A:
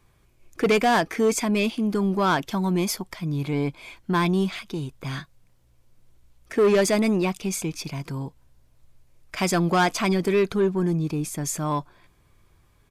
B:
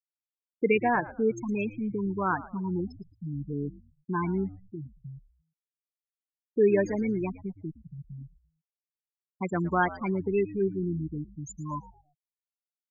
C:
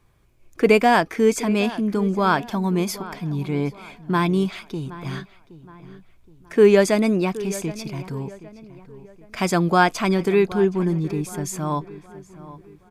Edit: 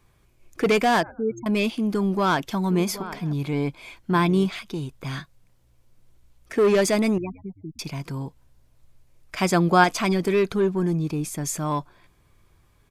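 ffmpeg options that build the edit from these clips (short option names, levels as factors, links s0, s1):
-filter_complex "[1:a]asplit=2[s0][s1];[2:a]asplit=3[s2][s3][s4];[0:a]asplit=6[s5][s6][s7][s8][s9][s10];[s5]atrim=end=1.032[s11];[s0]atrim=start=1.028:end=1.462[s12];[s6]atrim=start=1.458:end=2.702[s13];[s2]atrim=start=2.698:end=3.332[s14];[s7]atrim=start=3.328:end=4.112[s15];[s3]atrim=start=4.108:end=4.512[s16];[s8]atrim=start=4.508:end=7.182[s17];[s1]atrim=start=7.178:end=7.792[s18];[s9]atrim=start=7.788:end=9.422[s19];[s4]atrim=start=9.418:end=9.842[s20];[s10]atrim=start=9.838[s21];[s11][s12]acrossfade=d=0.004:c1=hsin:c2=hsin[s22];[s22][s13]acrossfade=d=0.004:c1=hsin:c2=hsin[s23];[s23][s14]acrossfade=d=0.004:c1=hsin:c2=hsin[s24];[s24][s15]acrossfade=d=0.004:c1=hsin:c2=hsin[s25];[s25][s16]acrossfade=d=0.004:c1=hsin:c2=hsin[s26];[s26][s17]acrossfade=d=0.004:c1=hsin:c2=hsin[s27];[s27][s18]acrossfade=d=0.004:c1=hsin:c2=hsin[s28];[s28][s19]acrossfade=d=0.004:c1=hsin:c2=hsin[s29];[s29][s20]acrossfade=d=0.004:c1=hsin:c2=hsin[s30];[s30][s21]acrossfade=d=0.004:c1=hsin:c2=hsin"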